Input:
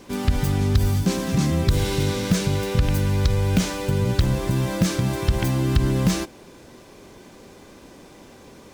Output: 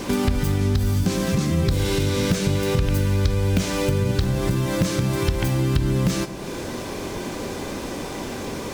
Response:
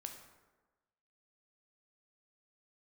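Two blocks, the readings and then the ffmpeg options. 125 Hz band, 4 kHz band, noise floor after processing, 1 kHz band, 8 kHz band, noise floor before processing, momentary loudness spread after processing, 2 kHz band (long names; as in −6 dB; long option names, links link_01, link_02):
0.0 dB, +1.0 dB, −31 dBFS, +0.5 dB, +1.0 dB, −47 dBFS, 9 LU, +1.5 dB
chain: -filter_complex "[0:a]acompressor=threshold=-37dB:ratio=4,asplit=2[link_01][link_02];[1:a]atrim=start_sample=2205[link_03];[link_02][link_03]afir=irnorm=-1:irlink=0,volume=7dB[link_04];[link_01][link_04]amix=inputs=2:normalize=0,volume=8dB"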